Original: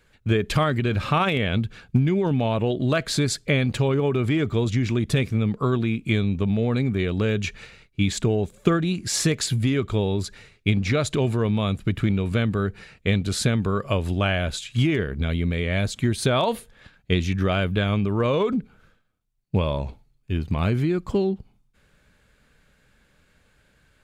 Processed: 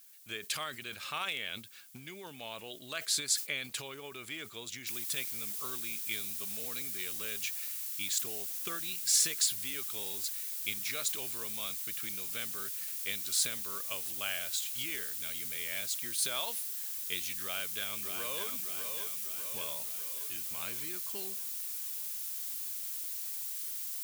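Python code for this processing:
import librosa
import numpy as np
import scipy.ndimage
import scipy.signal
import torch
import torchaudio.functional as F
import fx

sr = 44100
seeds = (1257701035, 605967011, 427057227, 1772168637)

y = fx.noise_floor_step(x, sr, seeds[0], at_s=4.87, before_db=-60, after_db=-42, tilt_db=0.0)
y = fx.echo_throw(y, sr, start_s=17.42, length_s=1.06, ms=600, feedback_pct=60, wet_db=-6.0)
y = np.diff(y, prepend=0.0)
y = fx.sustainer(y, sr, db_per_s=150.0)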